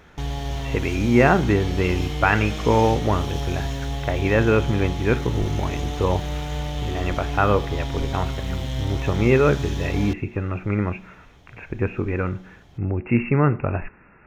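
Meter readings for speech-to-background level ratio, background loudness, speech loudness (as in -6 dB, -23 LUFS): 6.0 dB, -29.0 LUFS, -23.0 LUFS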